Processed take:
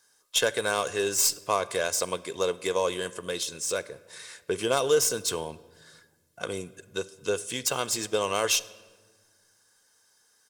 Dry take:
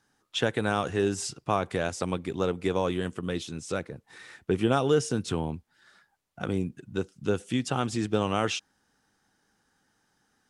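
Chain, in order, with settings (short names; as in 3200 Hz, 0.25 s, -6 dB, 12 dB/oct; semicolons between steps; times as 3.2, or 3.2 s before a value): tracing distortion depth 0.034 ms; tone controls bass -14 dB, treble +13 dB; comb 1.9 ms, depth 52%; on a send: reverb RT60 1.4 s, pre-delay 4 ms, DRR 16 dB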